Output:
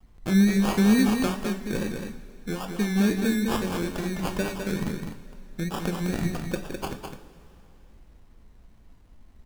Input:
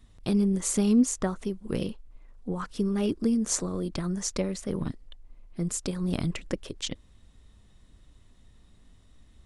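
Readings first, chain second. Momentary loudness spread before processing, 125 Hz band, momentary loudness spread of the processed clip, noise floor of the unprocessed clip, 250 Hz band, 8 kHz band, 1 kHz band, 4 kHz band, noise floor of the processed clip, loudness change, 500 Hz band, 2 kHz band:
13 LU, +3.5 dB, 16 LU, −57 dBFS, +3.5 dB, −6.0 dB, +8.0 dB, +3.0 dB, −53 dBFS, +3.0 dB, +2.0 dB, +11.5 dB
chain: decimation without filtering 22×
coupled-rooms reverb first 0.43 s, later 3.3 s, from −18 dB, DRR 5 dB
pitch vibrato 2.3 Hz 86 cents
single-tap delay 207 ms −6 dB

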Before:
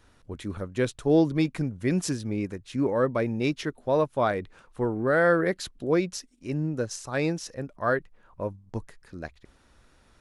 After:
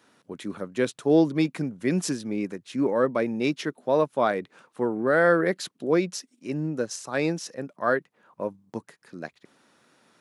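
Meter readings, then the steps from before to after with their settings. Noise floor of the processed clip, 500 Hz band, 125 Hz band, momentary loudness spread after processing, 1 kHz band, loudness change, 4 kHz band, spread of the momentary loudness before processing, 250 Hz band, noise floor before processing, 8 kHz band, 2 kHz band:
−71 dBFS, +1.5 dB, −3.5 dB, 17 LU, +1.5 dB, +1.0 dB, +1.5 dB, 16 LU, +1.0 dB, −60 dBFS, +1.5 dB, +1.5 dB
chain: high-pass filter 160 Hz 24 dB per octave
level +1.5 dB

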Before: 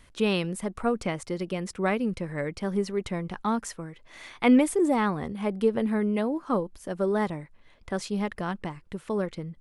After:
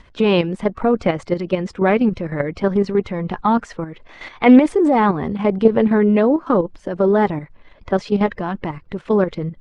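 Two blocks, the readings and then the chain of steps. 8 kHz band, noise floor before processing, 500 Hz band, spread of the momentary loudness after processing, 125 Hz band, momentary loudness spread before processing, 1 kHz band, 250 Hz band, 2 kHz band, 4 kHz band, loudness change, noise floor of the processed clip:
can't be measured, −57 dBFS, +11.0 dB, 12 LU, +9.5 dB, 12 LU, +10.5 dB, +10.0 dB, +7.5 dB, +5.5 dB, +10.0 dB, −49 dBFS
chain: spectral magnitudes quantised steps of 15 dB
parametric band 660 Hz +2.5 dB 1.9 octaves
output level in coarse steps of 9 dB
high-frequency loss of the air 150 metres
boost into a limiter +13.5 dB
highs frequency-modulated by the lows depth 0.12 ms

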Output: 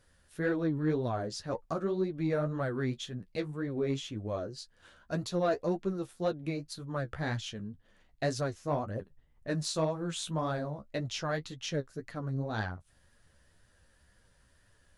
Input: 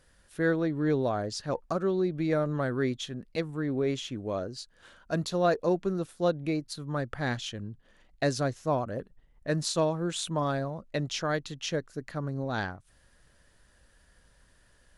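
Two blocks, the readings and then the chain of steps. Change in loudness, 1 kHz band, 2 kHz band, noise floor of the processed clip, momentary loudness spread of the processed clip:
−3.5 dB, −4.0 dB, −4.5 dB, −66 dBFS, 9 LU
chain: parametric band 96 Hz +4 dB 1.2 octaves
flanger 1.9 Hz, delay 8.4 ms, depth 7 ms, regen +26%
soft clipping −19 dBFS, distortion −24 dB

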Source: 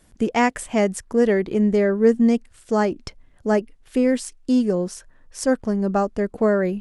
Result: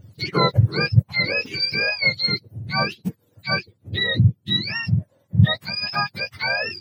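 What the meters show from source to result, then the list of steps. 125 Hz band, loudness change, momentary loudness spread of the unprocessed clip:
+12.0 dB, 0.0 dB, 8 LU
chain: frequency axis turned over on the octave scale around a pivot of 990 Hz
low-shelf EQ 480 Hz +11 dB
level −2 dB

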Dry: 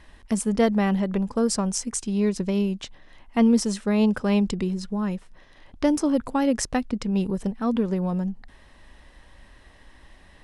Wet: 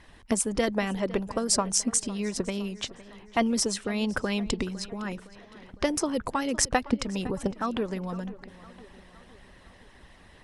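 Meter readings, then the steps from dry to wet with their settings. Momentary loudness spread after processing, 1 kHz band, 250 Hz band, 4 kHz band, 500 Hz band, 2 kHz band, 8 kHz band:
11 LU, −0.5 dB, −7.5 dB, +3.0 dB, −4.0 dB, +2.0 dB, +4.0 dB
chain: harmonic and percussive parts rebalanced harmonic −13 dB
tape delay 509 ms, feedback 58%, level −17 dB, low-pass 3,600 Hz
level +4 dB

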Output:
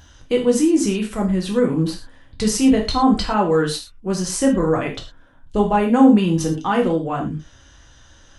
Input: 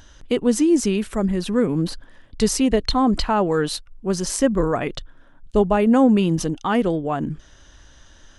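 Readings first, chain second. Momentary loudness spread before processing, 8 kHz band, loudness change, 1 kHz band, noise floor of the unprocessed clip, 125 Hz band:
10 LU, +1.0 dB, +2.0 dB, +3.0 dB, −50 dBFS, +2.0 dB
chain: reverb whose tail is shaped and stops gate 140 ms falling, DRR −0.5 dB
level −2 dB

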